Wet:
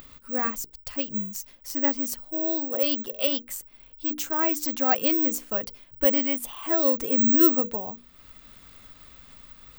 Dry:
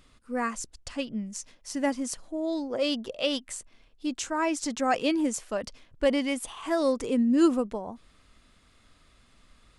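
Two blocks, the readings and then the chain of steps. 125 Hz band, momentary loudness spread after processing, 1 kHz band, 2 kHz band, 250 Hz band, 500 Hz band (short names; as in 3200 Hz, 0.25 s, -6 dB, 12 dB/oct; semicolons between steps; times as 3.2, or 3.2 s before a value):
n/a, 14 LU, 0.0 dB, 0.0 dB, -0.5 dB, 0.0 dB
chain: upward compressor, threshold -42 dBFS; careless resampling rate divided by 2×, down filtered, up zero stuff; notches 60/120/180/240/300/360/420/480 Hz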